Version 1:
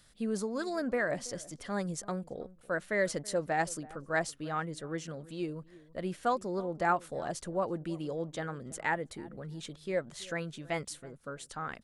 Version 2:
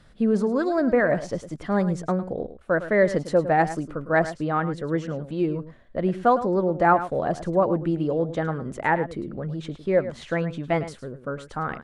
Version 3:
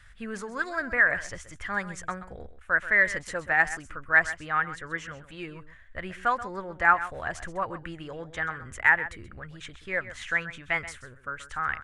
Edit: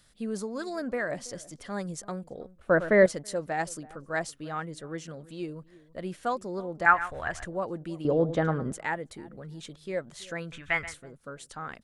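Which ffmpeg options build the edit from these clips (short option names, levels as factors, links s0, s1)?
-filter_complex "[1:a]asplit=2[s0][s1];[2:a]asplit=2[s2][s3];[0:a]asplit=5[s4][s5][s6][s7][s8];[s4]atrim=end=2.592[s9];[s0]atrim=start=2.588:end=3.062[s10];[s5]atrim=start=3.058:end=6.862[s11];[s2]atrim=start=6.858:end=7.452[s12];[s6]atrim=start=7.448:end=8.052[s13];[s1]atrim=start=8.048:end=8.732[s14];[s7]atrim=start=8.728:end=10.522[s15];[s3]atrim=start=10.518:end=10.942[s16];[s8]atrim=start=10.938[s17];[s9][s10]acrossfade=d=0.004:c1=hsin:c2=hsin[s18];[s18][s11]acrossfade=d=0.004:c1=hsin:c2=hsin[s19];[s19][s12]acrossfade=d=0.004:c1=hsin:c2=hsin[s20];[s20][s13]acrossfade=d=0.004:c1=hsin:c2=hsin[s21];[s21][s14]acrossfade=d=0.004:c1=hsin:c2=hsin[s22];[s22][s15]acrossfade=d=0.004:c1=hsin:c2=hsin[s23];[s23][s16]acrossfade=d=0.004:c1=hsin:c2=hsin[s24];[s24][s17]acrossfade=d=0.004:c1=hsin:c2=hsin"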